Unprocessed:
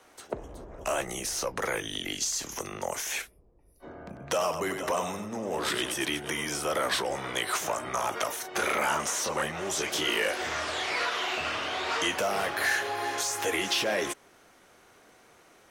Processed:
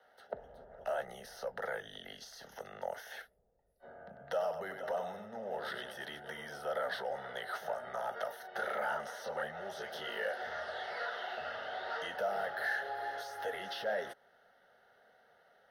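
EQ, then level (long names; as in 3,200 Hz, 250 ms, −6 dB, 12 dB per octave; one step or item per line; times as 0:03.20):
dynamic equaliser 2,700 Hz, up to −4 dB, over −42 dBFS, Q 1.1
three-way crossover with the lows and the highs turned down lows −14 dB, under 190 Hz, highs −12 dB, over 2,700 Hz
phaser with its sweep stopped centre 1,600 Hz, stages 8
−4.0 dB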